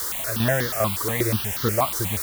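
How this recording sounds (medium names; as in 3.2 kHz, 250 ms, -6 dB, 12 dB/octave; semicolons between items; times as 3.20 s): tremolo saw down 2.5 Hz, depth 60%; a quantiser's noise floor 6-bit, dither triangular; notches that jump at a steady rate 8.3 Hz 690–2500 Hz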